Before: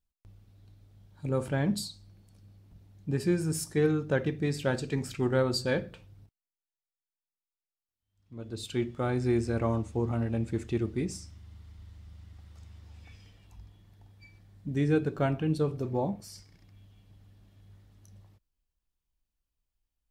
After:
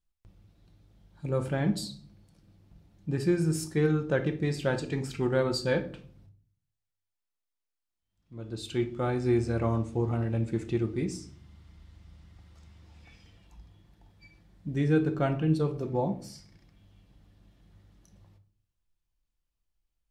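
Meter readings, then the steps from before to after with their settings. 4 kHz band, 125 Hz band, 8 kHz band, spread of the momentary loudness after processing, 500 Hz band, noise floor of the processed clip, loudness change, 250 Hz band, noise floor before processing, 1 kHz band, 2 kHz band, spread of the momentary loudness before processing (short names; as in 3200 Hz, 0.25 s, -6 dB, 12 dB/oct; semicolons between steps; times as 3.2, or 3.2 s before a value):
-0.5 dB, +1.5 dB, -2.0 dB, 14 LU, +1.0 dB, under -85 dBFS, +1.0 dB, +1.0 dB, under -85 dBFS, +1.0 dB, +0.5 dB, 14 LU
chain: high shelf 11000 Hz -8.5 dB; shoebox room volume 550 m³, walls furnished, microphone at 0.81 m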